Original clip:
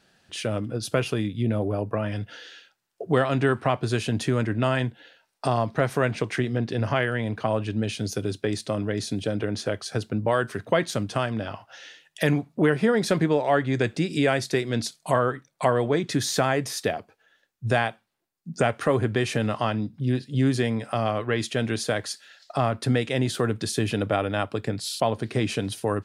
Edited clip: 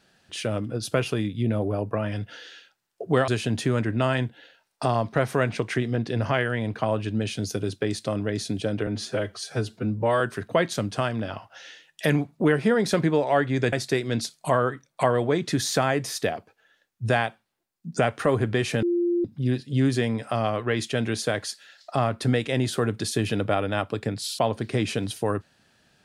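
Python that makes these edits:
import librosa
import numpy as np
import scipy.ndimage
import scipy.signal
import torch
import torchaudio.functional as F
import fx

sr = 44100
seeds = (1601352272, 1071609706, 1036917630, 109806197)

y = fx.edit(x, sr, fx.cut(start_s=3.28, length_s=0.62),
    fx.stretch_span(start_s=9.49, length_s=0.89, factor=1.5),
    fx.cut(start_s=13.9, length_s=0.44),
    fx.bleep(start_s=19.44, length_s=0.42, hz=347.0, db=-20.0), tone=tone)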